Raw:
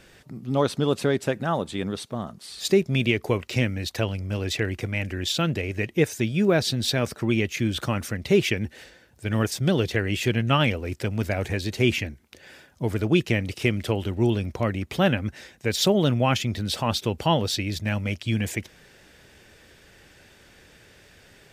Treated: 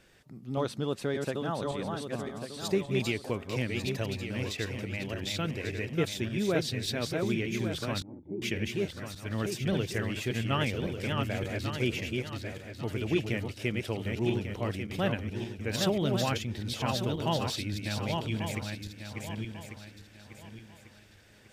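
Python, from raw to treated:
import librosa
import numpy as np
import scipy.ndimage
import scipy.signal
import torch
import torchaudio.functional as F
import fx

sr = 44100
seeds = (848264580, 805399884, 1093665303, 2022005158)

y = fx.reverse_delay_fb(x, sr, ms=572, feedback_pct=54, wet_db=-3.5)
y = fx.formant_cascade(y, sr, vowel='u', at=(8.02, 8.42))
y = y * 10.0 ** (-9.0 / 20.0)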